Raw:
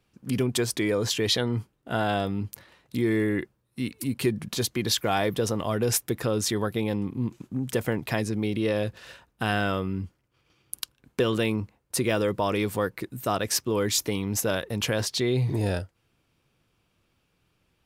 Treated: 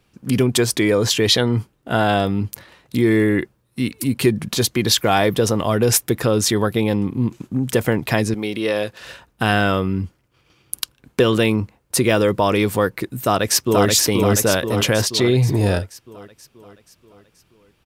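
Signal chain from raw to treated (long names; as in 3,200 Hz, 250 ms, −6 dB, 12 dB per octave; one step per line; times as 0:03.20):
0:08.34–0:09.00: high-pass filter 480 Hz 6 dB per octave
0:13.23–0:13.87: delay throw 480 ms, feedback 55%, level −2.5 dB
level +8.5 dB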